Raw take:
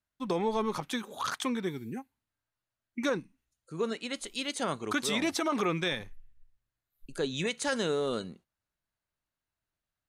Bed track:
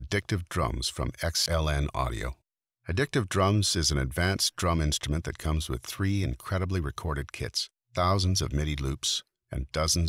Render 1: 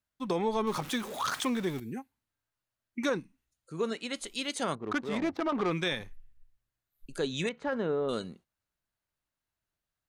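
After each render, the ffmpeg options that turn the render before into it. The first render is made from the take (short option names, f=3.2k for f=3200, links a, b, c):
-filter_complex "[0:a]asettb=1/sr,asplit=3[a][b][c];[a]atrim=end=0.674[d];[b]atrim=start=0.67:end=1.8,asetpts=PTS-STARTPTS,afade=t=in:d=0.004:c=qsin,afade=t=out:st=1.126:d=0.004:c=qsin,aeval=exprs='val(0)+0.5*0.0112*sgn(val(0))':c=same[e];[c]atrim=start=1.796[f];[d][e]acrossfade=d=0.004:c1=hsin:c2=qsin[g];[g][f]acrossfade=d=0.004:c1=qsin:c2=hsin,asettb=1/sr,asplit=3[h][i][j];[h]atrim=end=4.754[k];[i]atrim=start=4.75:end=5.71,asetpts=PTS-STARTPTS,afade=t=in:d=0.004:c=qsin,afade=t=out:st=0.956:d=0.004:c=qsin,adynamicsmooth=sensitivity=2:basefreq=690[l];[j]atrim=start=5.706[m];[k][l]acrossfade=d=0.004:c1=hsin:c2=qsin[n];[n][m]acrossfade=d=0.004:c1=qsin:c2=hsin,asettb=1/sr,asplit=3[o][p][q];[o]atrim=end=7.494[r];[p]atrim=start=7.49:end=8.09,asetpts=PTS-STARTPTS,afade=t=in:d=0.004:c=qsin,afade=t=out:st=0.596:d=0.004:c=qsin,lowpass=1.4k[s];[q]atrim=start=8.086[t];[r][s]acrossfade=d=0.004:c1=hsin:c2=qsin[u];[u][t]acrossfade=d=0.004:c1=qsin:c2=hsin"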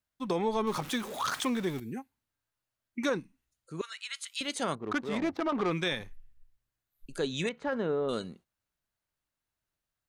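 -filter_complex "[0:a]asettb=1/sr,asplit=3[a][b][c];[a]atrim=end=3.814[d];[b]atrim=start=3.81:end=4.41,asetpts=PTS-STARTPTS,afade=t=in:d=0.004:c=qsin,afade=t=out:st=0.596:d=0.004:c=qsin,highpass=f=1.3k:w=0.5412,highpass=f=1.3k:w=1.3066[e];[c]atrim=start=4.406[f];[d][e]acrossfade=d=0.004:c1=hsin:c2=qsin[g];[g][f]acrossfade=d=0.004:c1=qsin:c2=hsin"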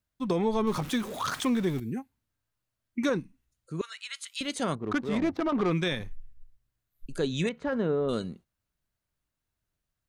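-af "lowshelf=f=270:g=9,bandreject=f=840:w=22"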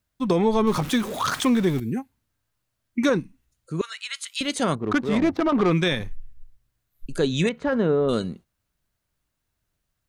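-af "volume=6.5dB"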